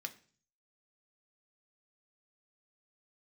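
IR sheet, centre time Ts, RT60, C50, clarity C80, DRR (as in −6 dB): 5 ms, 0.45 s, 16.5 dB, 20.5 dB, 5.0 dB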